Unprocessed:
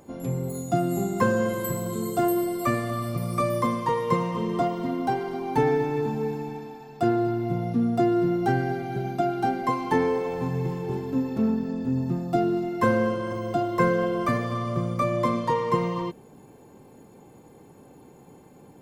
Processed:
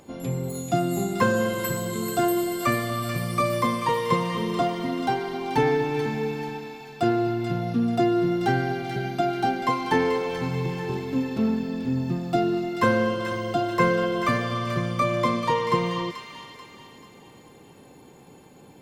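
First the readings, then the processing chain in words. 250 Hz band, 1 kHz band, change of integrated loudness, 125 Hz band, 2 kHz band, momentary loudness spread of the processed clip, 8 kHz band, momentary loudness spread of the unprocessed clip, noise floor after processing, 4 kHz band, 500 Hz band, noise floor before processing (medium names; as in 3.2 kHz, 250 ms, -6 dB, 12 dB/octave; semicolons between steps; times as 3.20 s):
0.0 dB, +1.5 dB, +1.0 dB, 0.0 dB, +4.5 dB, 7 LU, no reading, 6 LU, -50 dBFS, +8.5 dB, +0.5 dB, -51 dBFS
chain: peaking EQ 3.4 kHz +8 dB 1.8 oct; on a send: feedback echo behind a high-pass 436 ms, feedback 45%, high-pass 1.6 kHz, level -6 dB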